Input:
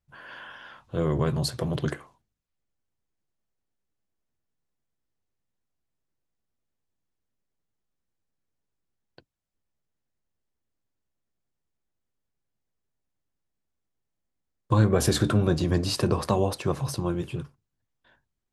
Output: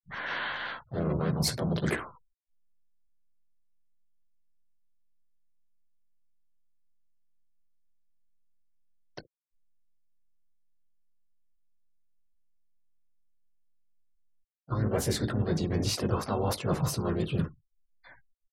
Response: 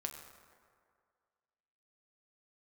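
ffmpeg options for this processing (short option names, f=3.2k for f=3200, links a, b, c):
-filter_complex "[0:a]aecho=1:1:19|67:0.299|0.133,areverse,acompressor=threshold=-35dB:ratio=10,areverse,afftfilt=real='re*gte(hypot(re,im),0.002)':imag='im*gte(hypot(re,im),0.002)':win_size=1024:overlap=0.75,asplit=4[a][b][c][d];[b]asetrate=22050,aresample=44100,atempo=2,volume=-16dB[e];[c]asetrate=52444,aresample=44100,atempo=0.840896,volume=-5dB[f];[d]asetrate=58866,aresample=44100,atempo=0.749154,volume=-10dB[g];[a][e][f][g]amix=inputs=4:normalize=0,volume=8dB"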